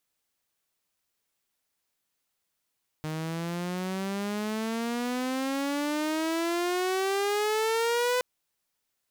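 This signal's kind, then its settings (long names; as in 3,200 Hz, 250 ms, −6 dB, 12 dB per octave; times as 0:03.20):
pitch glide with a swell saw, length 5.17 s, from 154 Hz, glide +20.5 semitones, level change +7.5 dB, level −21 dB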